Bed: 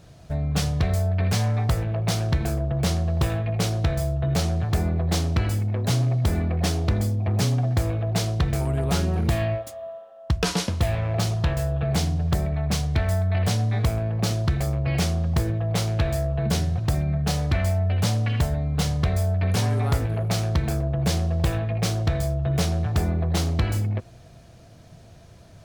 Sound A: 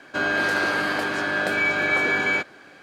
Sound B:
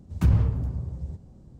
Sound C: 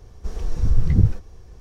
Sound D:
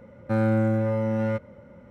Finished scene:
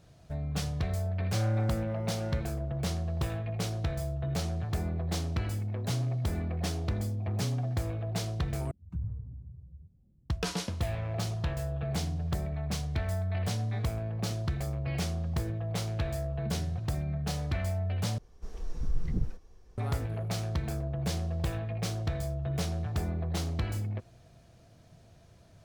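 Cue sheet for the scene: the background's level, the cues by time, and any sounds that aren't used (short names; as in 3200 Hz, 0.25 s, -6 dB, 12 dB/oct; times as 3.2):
bed -9 dB
1.03 add D -11.5 dB
8.71 replace with B -15.5 dB + spectral contrast raised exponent 1.5
18.18 replace with C -11 dB + bell 93 Hz -9.5 dB
not used: A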